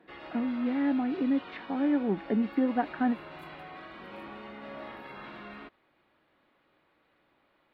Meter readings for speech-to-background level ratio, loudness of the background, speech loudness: 15.0 dB, -45.0 LUFS, -30.0 LUFS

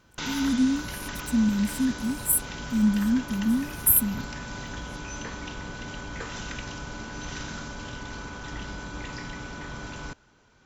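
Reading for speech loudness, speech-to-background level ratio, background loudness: -24.5 LUFS, 12.0 dB, -36.5 LUFS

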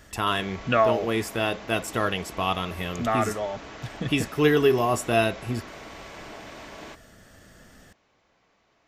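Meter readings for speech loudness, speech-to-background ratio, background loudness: -25.0 LUFS, 16.5 dB, -41.5 LUFS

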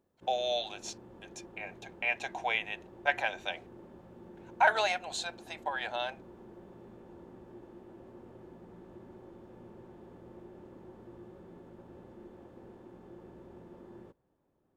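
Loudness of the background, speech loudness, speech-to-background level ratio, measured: -52.5 LUFS, -32.5 LUFS, 20.0 dB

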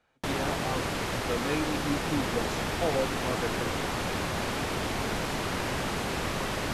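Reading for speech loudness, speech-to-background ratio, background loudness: -35.0 LUFS, -4.0 dB, -31.0 LUFS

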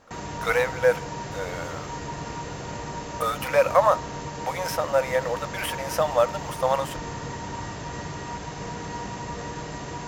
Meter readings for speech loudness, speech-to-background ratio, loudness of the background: -25.5 LUFS, 8.5 dB, -34.0 LUFS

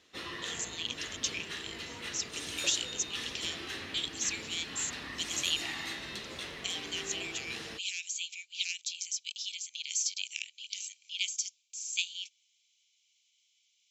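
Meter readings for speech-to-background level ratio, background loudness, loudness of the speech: 4.0 dB, -39.5 LUFS, -35.5 LUFS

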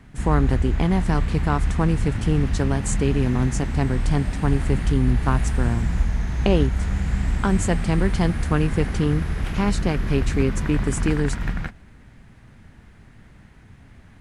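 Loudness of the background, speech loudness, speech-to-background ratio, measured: -26.0 LUFS, -24.5 LUFS, 1.5 dB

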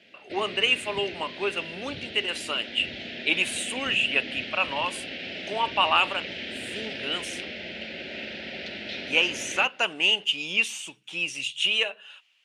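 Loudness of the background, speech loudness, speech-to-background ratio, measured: -35.5 LUFS, -25.5 LUFS, 10.0 dB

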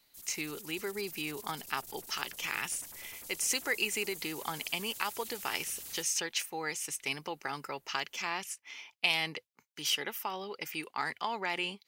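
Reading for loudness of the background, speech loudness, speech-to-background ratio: -44.5 LUFS, -35.0 LUFS, 9.5 dB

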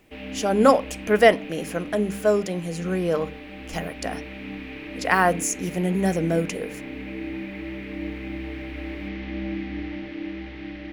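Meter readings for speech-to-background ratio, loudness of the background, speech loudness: 12.0 dB, -35.0 LUFS, -23.0 LUFS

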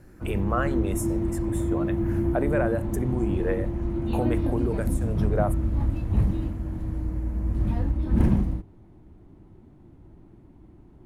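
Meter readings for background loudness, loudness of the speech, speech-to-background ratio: -27.5 LUFS, -31.0 LUFS, -3.5 dB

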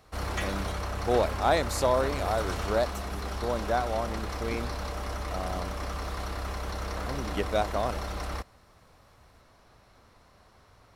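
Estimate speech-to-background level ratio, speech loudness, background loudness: 3.5 dB, -31.0 LUFS, -34.5 LUFS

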